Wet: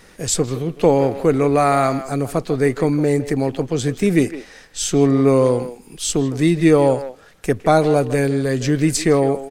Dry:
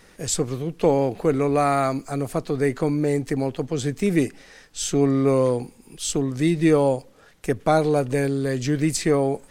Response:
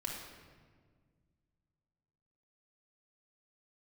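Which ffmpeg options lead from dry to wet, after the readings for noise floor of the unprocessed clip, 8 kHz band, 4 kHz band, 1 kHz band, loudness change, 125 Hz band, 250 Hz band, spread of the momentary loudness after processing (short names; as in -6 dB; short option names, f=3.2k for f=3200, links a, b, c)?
-52 dBFS, +4.5 dB, +4.5 dB, +4.5 dB, +4.5 dB, +4.5 dB, +4.5 dB, 9 LU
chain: -filter_complex "[0:a]asplit=2[a][b];[b]adelay=160,highpass=300,lowpass=3.4k,asoftclip=type=hard:threshold=-15dB,volume=-12dB[c];[a][c]amix=inputs=2:normalize=0,volume=4.5dB"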